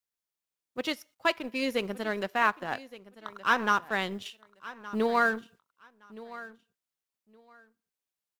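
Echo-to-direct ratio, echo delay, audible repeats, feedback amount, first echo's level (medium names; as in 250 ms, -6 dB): -17.5 dB, 1168 ms, 2, 19%, -17.5 dB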